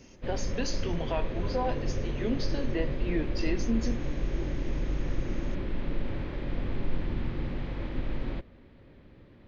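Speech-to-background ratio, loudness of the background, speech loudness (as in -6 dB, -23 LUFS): 0.5 dB, -35.0 LUFS, -34.5 LUFS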